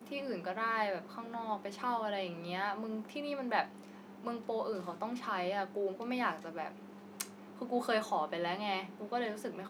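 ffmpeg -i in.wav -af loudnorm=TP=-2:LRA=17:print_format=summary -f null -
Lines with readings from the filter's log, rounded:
Input Integrated:    -37.4 LUFS
Input True Peak:     -13.6 dBTP
Input LRA:             1.0 LU
Input Threshold:     -47.6 LUFS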